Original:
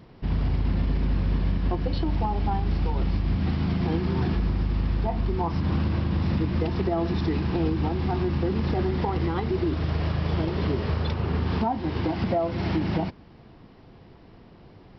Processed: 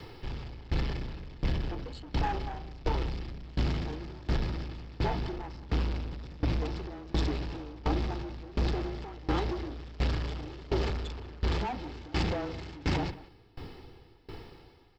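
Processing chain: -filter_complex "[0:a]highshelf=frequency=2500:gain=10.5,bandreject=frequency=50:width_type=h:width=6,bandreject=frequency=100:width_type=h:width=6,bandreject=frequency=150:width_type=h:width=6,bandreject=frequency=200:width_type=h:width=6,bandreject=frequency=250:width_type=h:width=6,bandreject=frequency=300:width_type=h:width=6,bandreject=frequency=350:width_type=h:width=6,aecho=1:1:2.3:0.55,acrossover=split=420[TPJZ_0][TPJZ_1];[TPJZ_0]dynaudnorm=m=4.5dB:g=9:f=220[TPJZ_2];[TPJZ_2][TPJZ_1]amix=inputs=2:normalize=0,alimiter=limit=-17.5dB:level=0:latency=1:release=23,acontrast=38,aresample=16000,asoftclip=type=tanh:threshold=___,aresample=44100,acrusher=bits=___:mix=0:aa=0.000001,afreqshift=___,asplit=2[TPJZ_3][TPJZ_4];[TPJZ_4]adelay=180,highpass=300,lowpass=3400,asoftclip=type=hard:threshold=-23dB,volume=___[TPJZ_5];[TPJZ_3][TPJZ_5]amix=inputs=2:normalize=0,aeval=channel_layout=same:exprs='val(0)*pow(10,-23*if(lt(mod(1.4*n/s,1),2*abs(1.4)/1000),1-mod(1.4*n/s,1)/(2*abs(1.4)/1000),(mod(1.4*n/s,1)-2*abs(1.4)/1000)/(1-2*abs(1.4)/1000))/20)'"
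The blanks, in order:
-22.5dB, 10, -19, -11dB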